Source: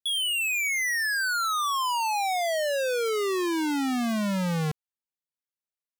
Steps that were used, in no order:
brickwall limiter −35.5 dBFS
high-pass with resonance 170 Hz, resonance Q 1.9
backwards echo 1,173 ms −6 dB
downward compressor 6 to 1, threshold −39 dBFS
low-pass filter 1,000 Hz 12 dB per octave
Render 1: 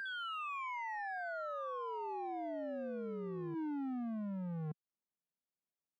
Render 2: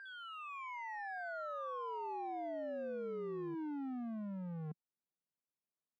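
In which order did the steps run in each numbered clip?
low-pass filter, then backwards echo, then downward compressor, then high-pass with resonance, then brickwall limiter
high-pass with resonance, then brickwall limiter, then backwards echo, then low-pass filter, then downward compressor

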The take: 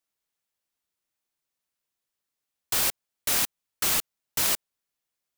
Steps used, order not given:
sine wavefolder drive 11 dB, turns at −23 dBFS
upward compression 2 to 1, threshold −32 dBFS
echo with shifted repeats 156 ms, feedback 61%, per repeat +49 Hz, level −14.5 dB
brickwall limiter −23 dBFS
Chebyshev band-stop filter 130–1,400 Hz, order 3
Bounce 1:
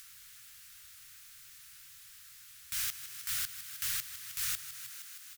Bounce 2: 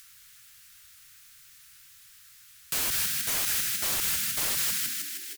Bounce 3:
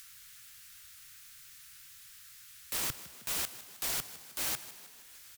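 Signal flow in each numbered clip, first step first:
sine wavefolder, then echo with shifted repeats, then upward compression, then brickwall limiter, then Chebyshev band-stop filter
Chebyshev band-stop filter, then echo with shifted repeats, then brickwall limiter, then sine wavefolder, then upward compression
Chebyshev band-stop filter, then sine wavefolder, then upward compression, then brickwall limiter, then echo with shifted repeats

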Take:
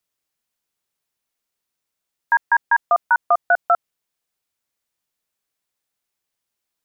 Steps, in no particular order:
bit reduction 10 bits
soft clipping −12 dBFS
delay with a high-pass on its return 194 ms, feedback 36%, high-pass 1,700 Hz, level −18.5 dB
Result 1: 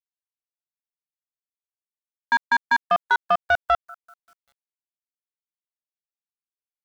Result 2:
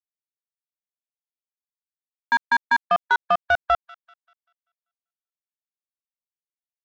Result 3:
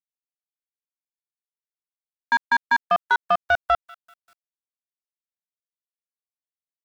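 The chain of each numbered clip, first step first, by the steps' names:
delay with a high-pass on its return, then soft clipping, then bit reduction
soft clipping, then bit reduction, then delay with a high-pass on its return
soft clipping, then delay with a high-pass on its return, then bit reduction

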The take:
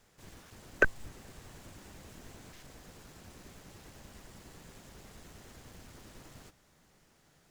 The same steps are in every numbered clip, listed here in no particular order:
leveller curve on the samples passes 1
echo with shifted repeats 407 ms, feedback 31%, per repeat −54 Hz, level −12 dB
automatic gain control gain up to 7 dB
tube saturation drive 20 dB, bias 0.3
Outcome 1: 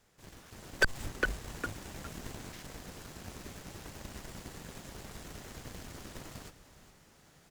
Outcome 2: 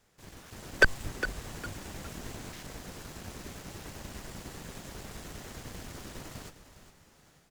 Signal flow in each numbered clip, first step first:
echo with shifted repeats, then leveller curve on the samples, then automatic gain control, then tube saturation
tube saturation, then leveller curve on the samples, then automatic gain control, then echo with shifted repeats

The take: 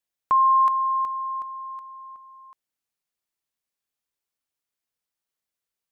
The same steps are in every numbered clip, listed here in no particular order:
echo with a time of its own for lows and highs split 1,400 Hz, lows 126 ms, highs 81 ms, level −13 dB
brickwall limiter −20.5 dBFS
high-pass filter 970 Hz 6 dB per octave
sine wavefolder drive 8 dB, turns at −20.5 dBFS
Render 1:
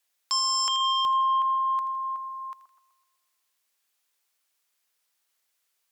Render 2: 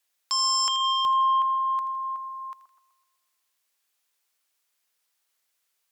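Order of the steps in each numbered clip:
high-pass filter, then sine wavefolder, then echo with a time of its own for lows and highs, then brickwall limiter
high-pass filter, then sine wavefolder, then brickwall limiter, then echo with a time of its own for lows and highs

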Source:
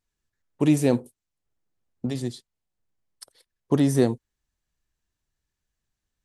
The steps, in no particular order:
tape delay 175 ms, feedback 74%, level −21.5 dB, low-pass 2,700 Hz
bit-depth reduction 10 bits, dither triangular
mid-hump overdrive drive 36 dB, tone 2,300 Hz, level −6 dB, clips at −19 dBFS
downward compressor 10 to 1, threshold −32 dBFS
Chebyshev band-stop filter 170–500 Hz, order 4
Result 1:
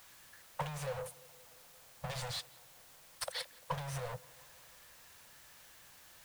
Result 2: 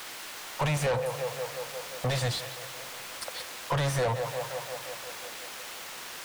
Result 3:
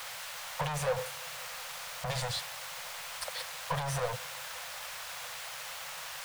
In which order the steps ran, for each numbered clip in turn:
mid-hump overdrive, then downward compressor, then Chebyshev band-stop filter, then bit-depth reduction, then tape delay
Chebyshev band-stop filter, then bit-depth reduction, then tape delay, then downward compressor, then mid-hump overdrive
downward compressor, then bit-depth reduction, then mid-hump overdrive, then Chebyshev band-stop filter, then tape delay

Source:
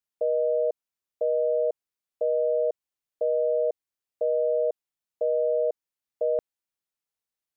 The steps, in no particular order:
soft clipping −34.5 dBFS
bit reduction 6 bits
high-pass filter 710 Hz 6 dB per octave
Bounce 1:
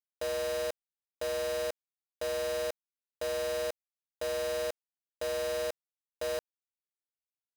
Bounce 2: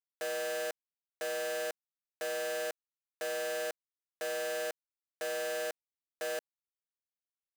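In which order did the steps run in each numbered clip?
high-pass filter, then soft clipping, then bit reduction
soft clipping, then bit reduction, then high-pass filter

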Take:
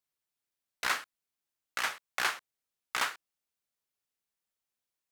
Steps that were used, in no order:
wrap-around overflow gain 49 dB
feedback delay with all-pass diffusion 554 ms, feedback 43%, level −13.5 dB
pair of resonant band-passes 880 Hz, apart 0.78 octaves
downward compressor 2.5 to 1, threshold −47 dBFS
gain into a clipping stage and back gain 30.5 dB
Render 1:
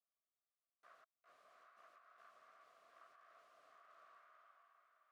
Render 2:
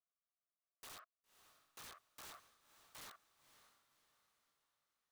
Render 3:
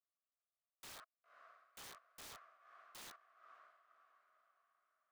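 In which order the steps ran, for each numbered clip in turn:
feedback delay with all-pass diffusion, then gain into a clipping stage and back, then downward compressor, then wrap-around overflow, then pair of resonant band-passes
pair of resonant band-passes, then gain into a clipping stage and back, then downward compressor, then wrap-around overflow, then feedback delay with all-pass diffusion
gain into a clipping stage and back, then pair of resonant band-passes, then downward compressor, then feedback delay with all-pass diffusion, then wrap-around overflow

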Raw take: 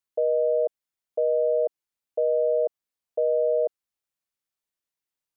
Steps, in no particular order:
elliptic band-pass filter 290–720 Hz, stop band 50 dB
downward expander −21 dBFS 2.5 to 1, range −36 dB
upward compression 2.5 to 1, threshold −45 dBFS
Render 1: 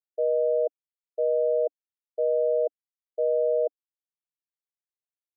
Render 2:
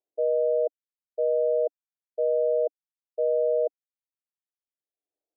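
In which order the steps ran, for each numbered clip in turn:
upward compression, then downward expander, then elliptic band-pass filter
downward expander, then upward compression, then elliptic band-pass filter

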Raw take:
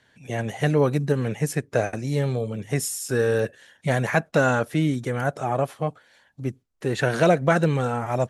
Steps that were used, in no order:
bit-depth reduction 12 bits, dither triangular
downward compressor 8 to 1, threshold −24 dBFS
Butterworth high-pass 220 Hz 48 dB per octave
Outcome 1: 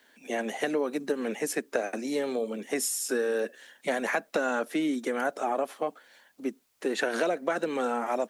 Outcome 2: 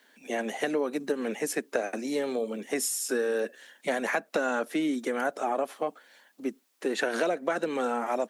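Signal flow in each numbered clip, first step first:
Butterworth high-pass, then downward compressor, then bit-depth reduction
bit-depth reduction, then Butterworth high-pass, then downward compressor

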